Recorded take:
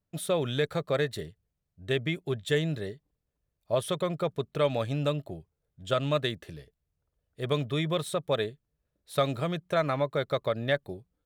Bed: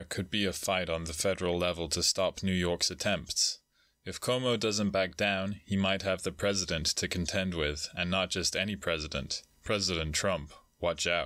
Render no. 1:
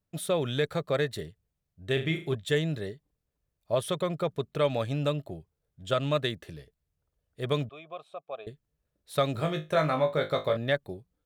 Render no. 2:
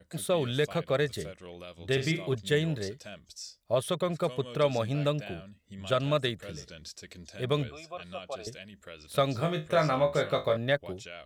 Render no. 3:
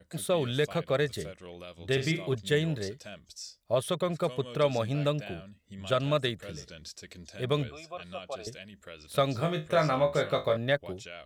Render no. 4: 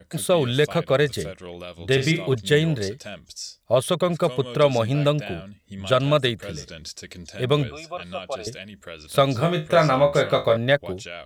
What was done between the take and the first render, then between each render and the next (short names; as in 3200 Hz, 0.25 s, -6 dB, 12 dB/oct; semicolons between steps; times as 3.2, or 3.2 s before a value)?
1.93–2.35 flutter echo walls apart 6.5 m, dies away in 0.34 s; 7.69–8.47 vowel filter a; 9.33–10.57 flutter echo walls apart 3.3 m, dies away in 0.23 s
add bed -15 dB
nothing audible
gain +8 dB